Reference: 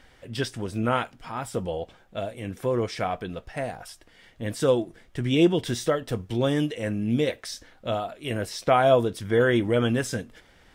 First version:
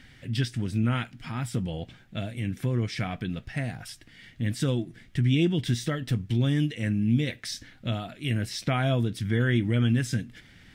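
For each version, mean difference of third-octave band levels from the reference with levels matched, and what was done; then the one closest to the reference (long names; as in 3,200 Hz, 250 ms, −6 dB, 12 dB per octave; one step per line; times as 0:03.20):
4.5 dB: octave-band graphic EQ 125/250/500/1,000/2,000/4,000 Hz +11/+6/−8/−7/+6/+3 dB
downward compressor 1.5 to 1, threshold −31 dBFS, peak gain reduction 7.5 dB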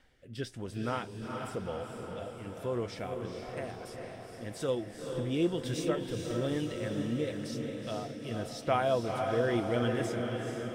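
7.5 dB: rotating-speaker cabinet horn 1 Hz
on a send: feedback delay with all-pass diffusion 457 ms, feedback 62%, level −4.5 dB
on the sum: level −8 dB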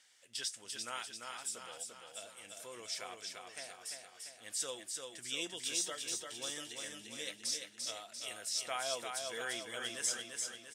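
13.0 dB: resonant band-pass 7,500 Hz, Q 1.6
repeating echo 344 ms, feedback 54%, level −4.5 dB
level +3.5 dB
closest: first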